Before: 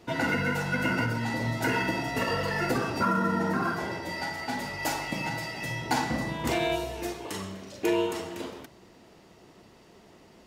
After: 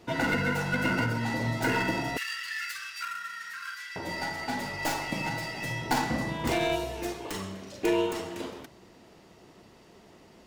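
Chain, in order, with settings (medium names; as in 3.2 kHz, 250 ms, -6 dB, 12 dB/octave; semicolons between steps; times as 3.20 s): tracing distortion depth 0.069 ms; 2.17–3.96 s: inverse Chebyshev high-pass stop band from 820 Hz, stop band 40 dB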